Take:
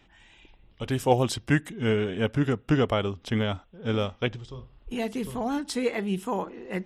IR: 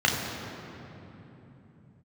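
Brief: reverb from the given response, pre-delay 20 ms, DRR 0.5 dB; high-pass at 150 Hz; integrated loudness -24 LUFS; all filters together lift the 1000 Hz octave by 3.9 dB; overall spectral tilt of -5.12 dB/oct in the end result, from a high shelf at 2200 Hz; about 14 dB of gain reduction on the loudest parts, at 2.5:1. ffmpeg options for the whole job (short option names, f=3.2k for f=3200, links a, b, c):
-filter_complex "[0:a]highpass=150,equalizer=f=1k:t=o:g=4,highshelf=f=2.2k:g=7,acompressor=threshold=-36dB:ratio=2.5,asplit=2[a][b];[1:a]atrim=start_sample=2205,adelay=20[c];[b][c]afir=irnorm=-1:irlink=0,volume=-16.5dB[d];[a][d]amix=inputs=2:normalize=0,volume=9dB"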